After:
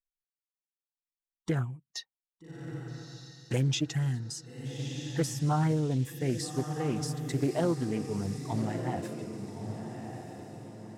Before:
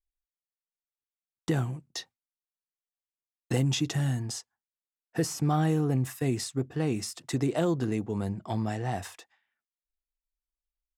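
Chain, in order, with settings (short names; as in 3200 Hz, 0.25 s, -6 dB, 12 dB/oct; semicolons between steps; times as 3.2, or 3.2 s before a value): per-bin expansion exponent 1.5; diffused feedback echo 1.254 s, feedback 44%, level -7 dB; Doppler distortion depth 0.28 ms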